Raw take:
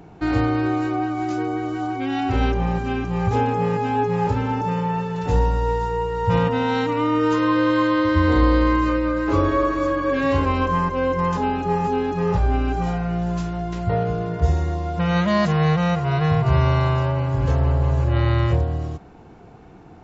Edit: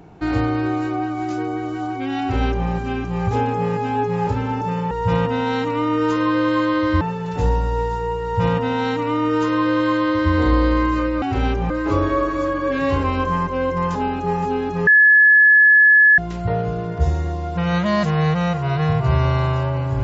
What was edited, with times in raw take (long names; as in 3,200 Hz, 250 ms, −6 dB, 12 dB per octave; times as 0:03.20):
0:02.20–0:02.68: duplicate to 0:09.12
0:06.13–0:08.23: duplicate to 0:04.91
0:12.29–0:13.60: beep over 1,710 Hz −8 dBFS